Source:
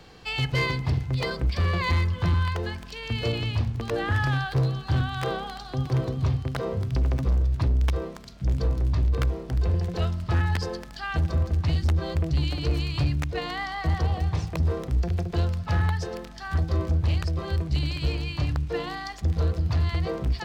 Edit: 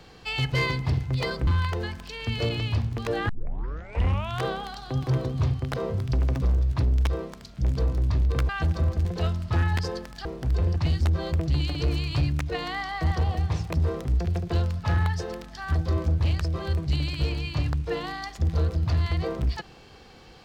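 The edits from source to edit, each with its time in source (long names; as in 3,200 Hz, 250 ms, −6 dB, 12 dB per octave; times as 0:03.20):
0:01.47–0:02.30: remove
0:04.12: tape start 1.15 s
0:09.32–0:09.83: swap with 0:11.03–0:11.59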